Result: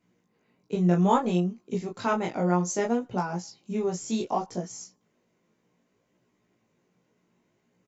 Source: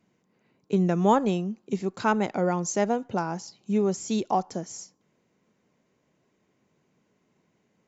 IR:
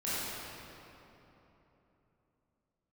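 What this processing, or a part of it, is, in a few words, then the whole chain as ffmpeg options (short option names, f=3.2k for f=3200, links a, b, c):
double-tracked vocal: -filter_complex "[0:a]asplit=2[a][b];[b]adelay=17,volume=-3dB[c];[a][c]amix=inputs=2:normalize=0,flanger=delay=16:depth=7.4:speed=0.63"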